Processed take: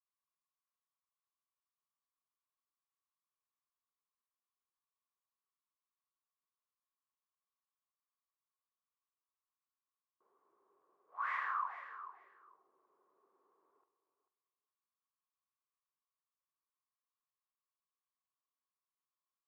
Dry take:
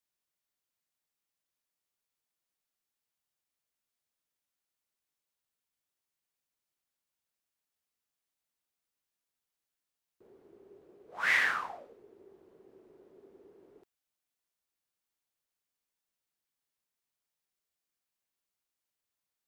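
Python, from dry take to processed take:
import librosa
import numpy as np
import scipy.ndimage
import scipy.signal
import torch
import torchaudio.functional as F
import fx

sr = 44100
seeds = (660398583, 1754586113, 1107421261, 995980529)

y = fx.bandpass_q(x, sr, hz=1100.0, q=11.0)
y = fx.doubler(y, sr, ms=45.0, db=-12.0)
y = fx.echo_feedback(y, sr, ms=441, feedback_pct=16, wet_db=-12)
y = y * 10.0 ** (6.5 / 20.0)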